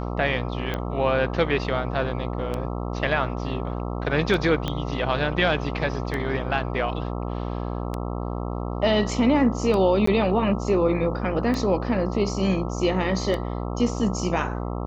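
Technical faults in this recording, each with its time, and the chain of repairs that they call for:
buzz 60 Hz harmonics 22 -29 dBFS
tick 33 1/3 rpm -15 dBFS
4.68 pop -13 dBFS
10.06–10.07 gap 14 ms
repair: de-click; de-hum 60 Hz, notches 22; interpolate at 10.06, 14 ms

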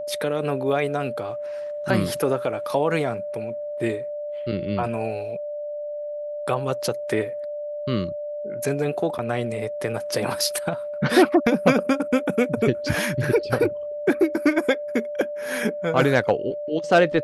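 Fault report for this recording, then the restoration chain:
tone 590 Hz -28 dBFS
9.18–9.19 gap 7.9 ms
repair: notch 590 Hz, Q 30; interpolate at 9.18, 7.9 ms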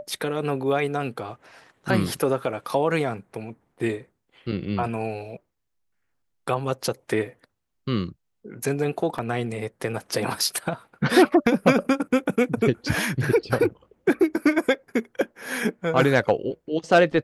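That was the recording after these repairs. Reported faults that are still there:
none

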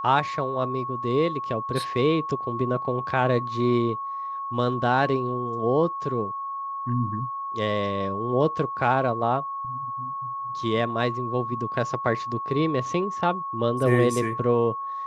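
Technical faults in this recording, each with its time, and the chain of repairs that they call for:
tone 1100 Hz -29 dBFS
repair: notch 1100 Hz, Q 30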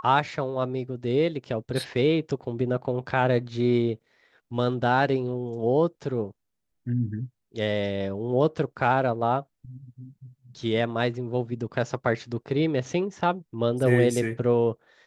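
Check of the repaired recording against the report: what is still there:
none

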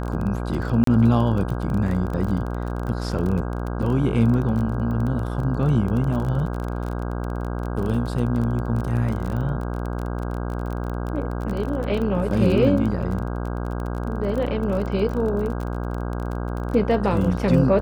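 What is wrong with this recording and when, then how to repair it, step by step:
buzz 60 Hz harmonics 27 -27 dBFS
crackle 24/s -27 dBFS
0.84–0.87 gap 33 ms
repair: de-click; de-hum 60 Hz, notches 27; interpolate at 0.84, 33 ms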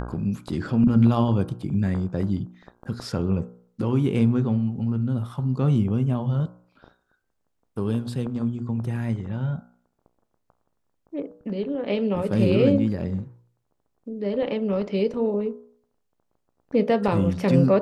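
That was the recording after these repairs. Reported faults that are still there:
none

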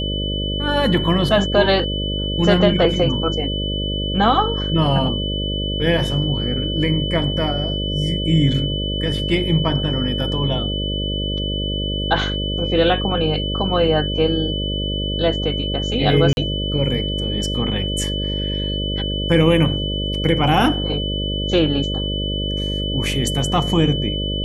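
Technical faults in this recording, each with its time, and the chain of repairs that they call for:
buzz 50 Hz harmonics 12 -24 dBFS
tone 3000 Hz -25 dBFS
16.33–16.37 gap 41 ms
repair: notch 3000 Hz, Q 30; de-hum 50 Hz, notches 12; interpolate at 16.33, 41 ms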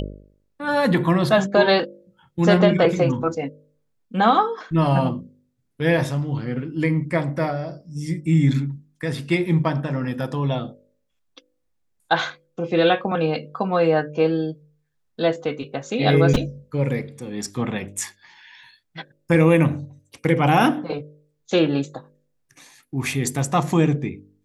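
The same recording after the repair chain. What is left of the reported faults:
none

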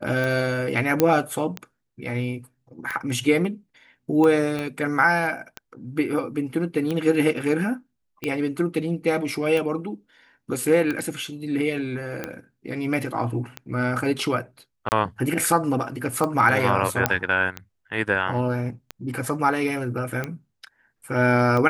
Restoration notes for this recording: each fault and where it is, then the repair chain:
tick 45 rpm
1 pop -4 dBFS
4.59 pop -16 dBFS
14.89–14.92 gap 29 ms
17.06 pop -2 dBFS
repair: de-click; interpolate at 14.89, 29 ms

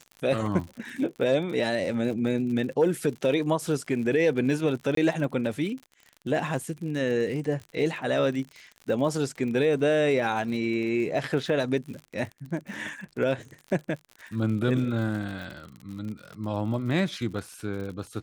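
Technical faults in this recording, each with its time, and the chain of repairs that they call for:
crackle 58/s -35 dBFS
4.95–4.97 gap 23 ms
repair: de-click; interpolate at 4.95, 23 ms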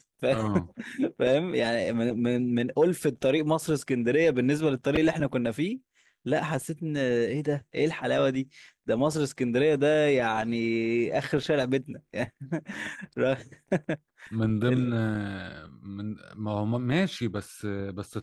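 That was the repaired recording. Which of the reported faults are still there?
none

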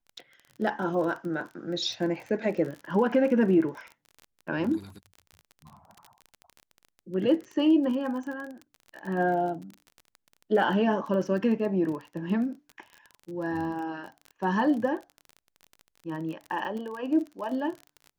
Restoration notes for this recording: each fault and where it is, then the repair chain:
crackle 31/s -35 dBFS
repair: de-click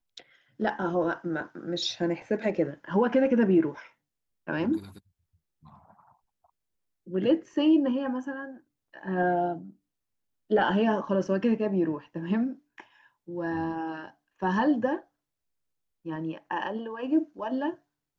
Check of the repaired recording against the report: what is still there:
none

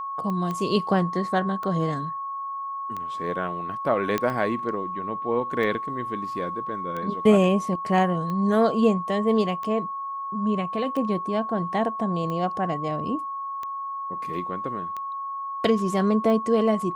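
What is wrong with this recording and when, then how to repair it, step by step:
tick 45 rpm -20 dBFS
tone 1100 Hz -29 dBFS
0.51 pop -18 dBFS
4.18 pop -11 dBFS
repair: de-click; notch 1100 Hz, Q 30

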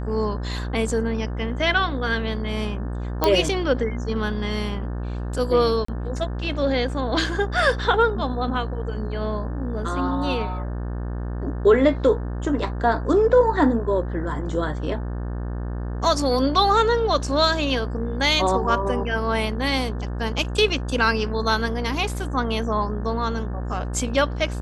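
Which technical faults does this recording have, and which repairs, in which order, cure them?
buzz 60 Hz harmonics 30 -28 dBFS
3.24 pop -5 dBFS
5.85–5.88 gap 34 ms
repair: de-click; de-hum 60 Hz, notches 30; interpolate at 5.85, 34 ms

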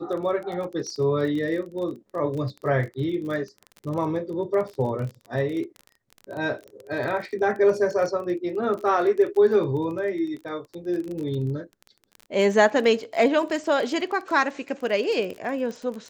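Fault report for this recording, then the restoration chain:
crackle 25/s -31 dBFS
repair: de-click

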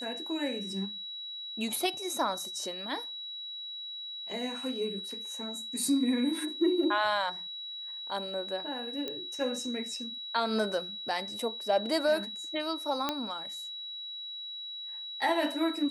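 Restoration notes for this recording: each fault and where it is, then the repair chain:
tone 3900 Hz -38 dBFS
9.08 pop -21 dBFS
13.09 pop -14 dBFS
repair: de-click; notch 3900 Hz, Q 30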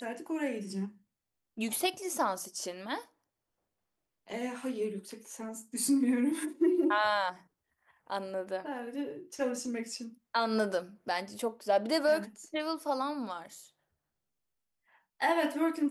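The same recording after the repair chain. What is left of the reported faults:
9.08 pop
13.09 pop

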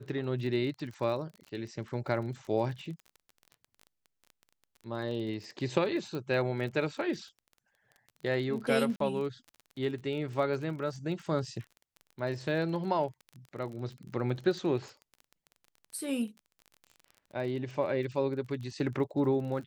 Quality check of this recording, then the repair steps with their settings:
crackle 27/s -40 dBFS
6.15 pop -26 dBFS
8.96–9 gap 43 ms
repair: de-click; interpolate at 8.96, 43 ms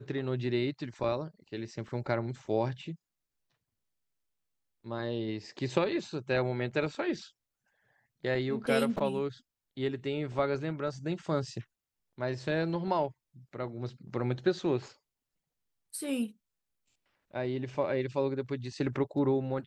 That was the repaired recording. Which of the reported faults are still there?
none

